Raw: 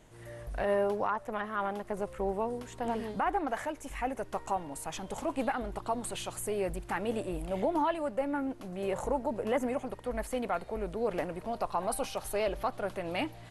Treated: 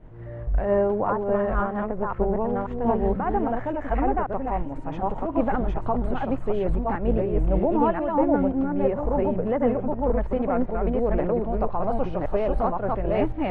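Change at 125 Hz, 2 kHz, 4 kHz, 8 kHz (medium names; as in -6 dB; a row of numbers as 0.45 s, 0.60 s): +14.5 dB, +1.5 dB, no reading, under -25 dB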